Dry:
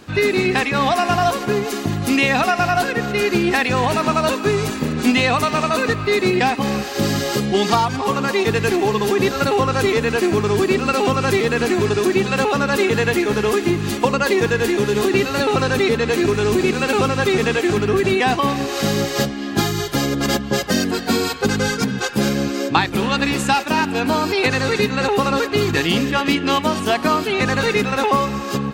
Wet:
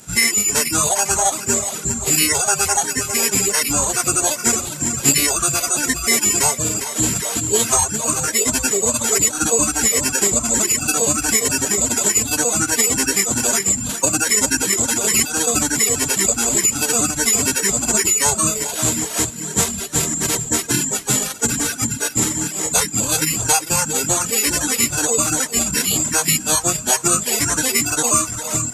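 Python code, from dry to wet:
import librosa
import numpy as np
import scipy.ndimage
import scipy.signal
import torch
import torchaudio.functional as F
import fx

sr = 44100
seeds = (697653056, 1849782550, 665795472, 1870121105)

y = fx.echo_feedback(x, sr, ms=403, feedback_pct=50, wet_db=-9.0)
y = (np.kron(y[::6], np.eye(6)[0]) * 6)[:len(y)]
y = fx.pitch_keep_formants(y, sr, semitones=-10.0)
y = fx.dereverb_blind(y, sr, rt60_s=1.2)
y = F.gain(torch.from_numpy(y), -6.0).numpy()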